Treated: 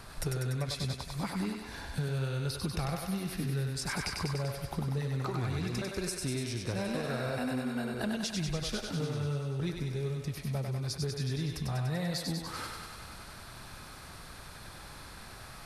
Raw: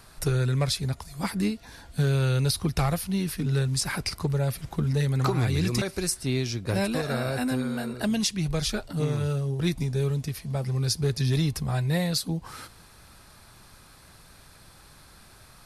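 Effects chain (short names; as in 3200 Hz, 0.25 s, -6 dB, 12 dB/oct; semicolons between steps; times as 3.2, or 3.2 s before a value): high shelf 4900 Hz -6.5 dB; compressor 4:1, threshold -38 dBFS, peak gain reduction 14.5 dB; thinning echo 97 ms, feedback 72%, high-pass 360 Hz, level -3.5 dB; gain +4 dB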